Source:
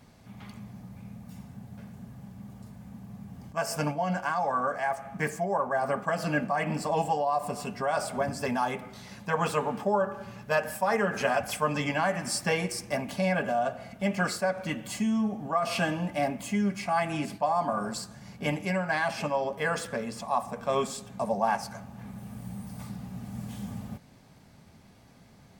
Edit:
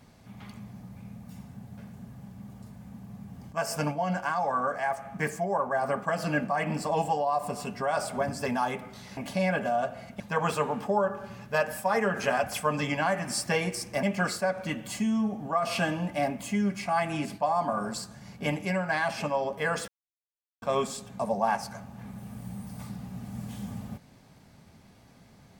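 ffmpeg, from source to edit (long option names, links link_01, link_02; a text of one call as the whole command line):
ffmpeg -i in.wav -filter_complex "[0:a]asplit=6[link_01][link_02][link_03][link_04][link_05][link_06];[link_01]atrim=end=9.172[link_07];[link_02]atrim=start=12.998:end=14.032[link_08];[link_03]atrim=start=9.168:end=13.002[link_09];[link_04]atrim=start=14.028:end=19.88,asetpts=PTS-STARTPTS,afade=type=out:start_time=5.848:duration=0.004:curve=hsin[link_10];[link_05]atrim=start=19.88:end=20.62,asetpts=PTS-STARTPTS,volume=0[link_11];[link_06]atrim=start=20.62,asetpts=PTS-STARTPTS,afade=type=in:duration=0.004:curve=hsin[link_12];[link_07][link_08]acrossfade=duration=0.004:curve1=hsin:curve2=hsin[link_13];[link_13][link_09]acrossfade=duration=0.004:curve1=hsin:curve2=hsin[link_14];[link_10][link_11][link_12]concat=n=3:v=0:a=1[link_15];[link_14][link_15]acrossfade=duration=0.004:curve1=hsin:curve2=hsin" out.wav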